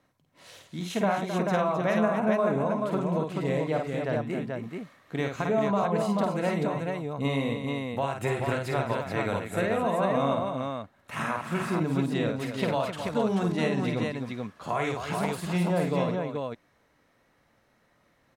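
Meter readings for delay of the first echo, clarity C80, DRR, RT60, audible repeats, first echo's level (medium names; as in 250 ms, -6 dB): 51 ms, no reverb, no reverb, no reverb, 4, -4.0 dB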